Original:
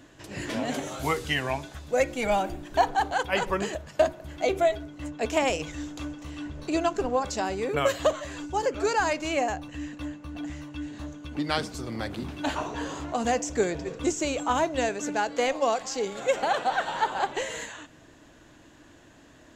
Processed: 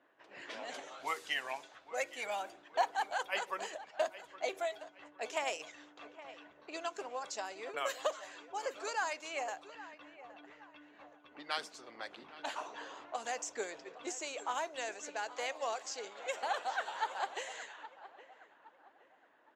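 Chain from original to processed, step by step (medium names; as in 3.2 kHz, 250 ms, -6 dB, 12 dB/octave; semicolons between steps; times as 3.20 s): high-pass 580 Hz 12 dB/octave; feedback delay 817 ms, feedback 36%, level -15.5 dB; harmonic-percussive split harmonic -6 dB; level-controlled noise filter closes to 1.6 kHz, open at -29 dBFS; trim -7 dB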